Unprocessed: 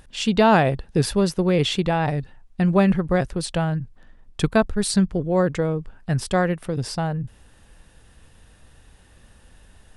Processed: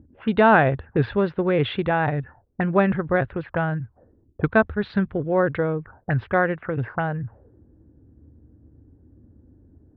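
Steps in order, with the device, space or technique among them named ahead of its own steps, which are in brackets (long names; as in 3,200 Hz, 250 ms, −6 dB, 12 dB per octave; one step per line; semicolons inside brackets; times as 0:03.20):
envelope filter bass rig (envelope-controlled low-pass 260–3,800 Hz up, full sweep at −20 dBFS; loudspeaker in its box 76–2,100 Hz, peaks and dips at 78 Hz +8 dB, 110 Hz +5 dB, 180 Hz −6 dB, 1,500 Hz +5 dB)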